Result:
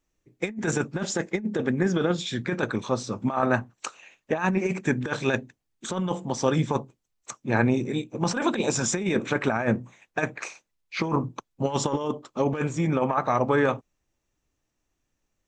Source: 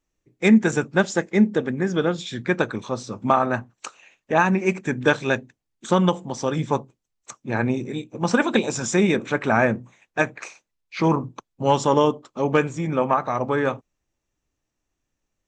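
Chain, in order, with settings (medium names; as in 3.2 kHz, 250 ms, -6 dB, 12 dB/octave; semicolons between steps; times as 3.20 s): compressor with a negative ratio -21 dBFS, ratio -0.5; trim -1.5 dB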